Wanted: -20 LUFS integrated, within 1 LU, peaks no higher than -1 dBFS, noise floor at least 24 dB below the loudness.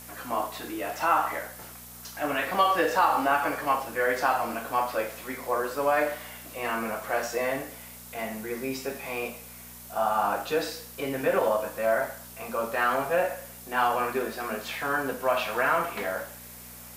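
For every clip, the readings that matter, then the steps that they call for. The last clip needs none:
hum 60 Hz; harmonics up to 240 Hz; hum level -49 dBFS; noise floor -45 dBFS; noise floor target -52 dBFS; loudness -28.0 LUFS; peak -10.0 dBFS; loudness target -20.0 LUFS
-> de-hum 60 Hz, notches 4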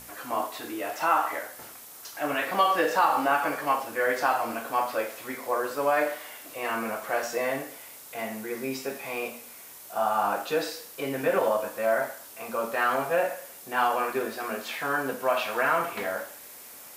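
hum none; noise floor -46 dBFS; noise floor target -52 dBFS
-> noise print and reduce 6 dB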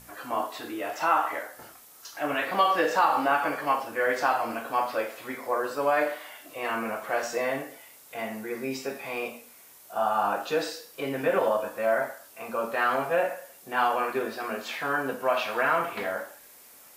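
noise floor -52 dBFS; loudness -28.0 LUFS; peak -10.0 dBFS; loudness target -20.0 LUFS
-> gain +8 dB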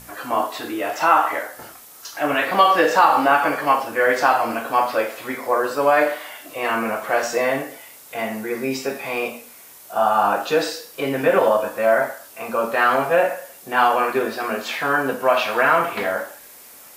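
loudness -20.0 LUFS; peak -2.0 dBFS; noise floor -44 dBFS

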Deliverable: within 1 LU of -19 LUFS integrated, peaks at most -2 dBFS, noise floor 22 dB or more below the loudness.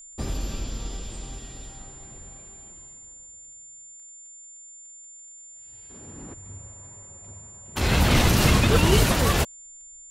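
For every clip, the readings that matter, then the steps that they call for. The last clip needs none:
ticks 16/s; steady tone 7200 Hz; tone level -43 dBFS; loudness -22.0 LUFS; peak -6.5 dBFS; loudness target -19.0 LUFS
-> de-click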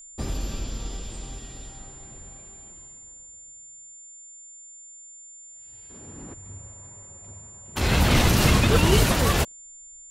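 ticks 0/s; steady tone 7200 Hz; tone level -43 dBFS
-> notch 7200 Hz, Q 30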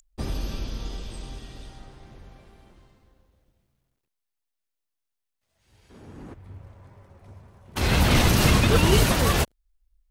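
steady tone none; loudness -21.5 LUFS; peak -6.5 dBFS; loudness target -19.0 LUFS
-> gain +2.5 dB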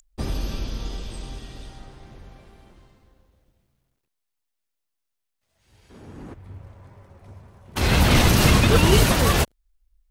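loudness -19.0 LUFS; peak -4.0 dBFS; noise floor -80 dBFS

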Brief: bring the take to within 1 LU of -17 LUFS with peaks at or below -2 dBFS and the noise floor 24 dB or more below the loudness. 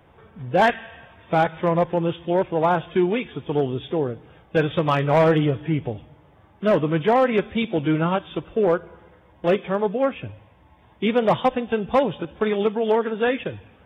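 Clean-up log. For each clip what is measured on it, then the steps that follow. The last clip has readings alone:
clipped 0.4%; flat tops at -11.0 dBFS; loudness -22.0 LUFS; peak -11.0 dBFS; loudness target -17.0 LUFS
-> clip repair -11 dBFS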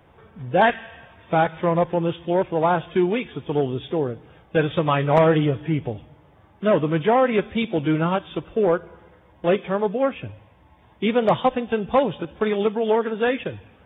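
clipped 0.0%; loudness -22.0 LUFS; peak -2.0 dBFS; loudness target -17.0 LUFS
-> gain +5 dB; limiter -2 dBFS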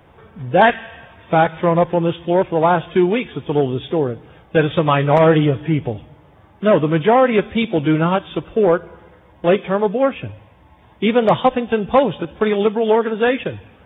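loudness -17.0 LUFS; peak -2.0 dBFS; noise floor -49 dBFS

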